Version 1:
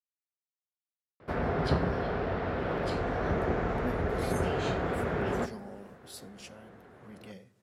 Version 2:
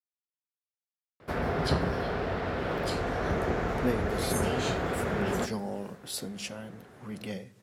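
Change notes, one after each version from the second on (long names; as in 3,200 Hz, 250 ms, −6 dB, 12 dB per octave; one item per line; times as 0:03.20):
speech +10.5 dB
background: remove low-pass filter 2,300 Hz 6 dB per octave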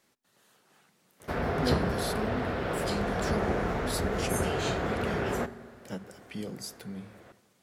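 speech: entry −2.20 s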